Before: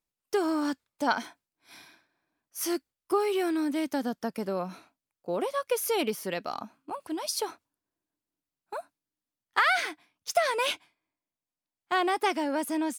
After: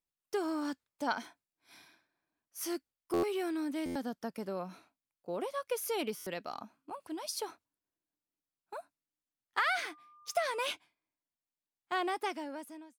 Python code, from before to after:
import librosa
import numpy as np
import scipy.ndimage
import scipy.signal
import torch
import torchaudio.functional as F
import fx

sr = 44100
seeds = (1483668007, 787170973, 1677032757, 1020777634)

y = fx.fade_out_tail(x, sr, length_s=0.91)
y = fx.dmg_tone(y, sr, hz=1200.0, level_db=-50.0, at=(9.72, 10.72), fade=0.02)
y = fx.buffer_glitch(y, sr, at_s=(3.13, 3.85, 6.16), block=512, repeats=8)
y = y * librosa.db_to_amplitude(-7.0)